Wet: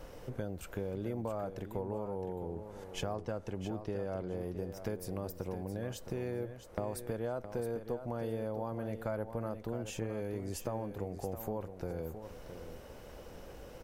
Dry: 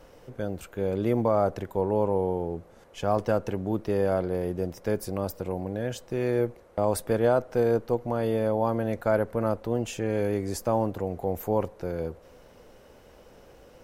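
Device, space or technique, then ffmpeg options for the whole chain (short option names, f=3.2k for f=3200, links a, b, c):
ASMR close-microphone chain: -filter_complex "[0:a]lowshelf=f=120:g=5.5,acompressor=threshold=-37dB:ratio=5,highshelf=f=10k:g=3.5,asettb=1/sr,asplit=3[a][b][c];[a]atrim=end=3.144[d];[b]atrim=start=3.14:end=4.4,asetpts=PTS-STARTPTS,afade=t=in:d=0.004:c=qsin,afade=t=out:st=1.256:d=0.004:c=qsin,lowpass=9.1k[e];[c]atrim=start=4.396[f];[d][e]acrossfade=d=0.004:c1=hsin:c2=qsin[g];[g][f]acrossfade=d=0.004:c1=qsin:c2=hsin,aecho=1:1:666|1332:0.316|0.0538,volume=1dB"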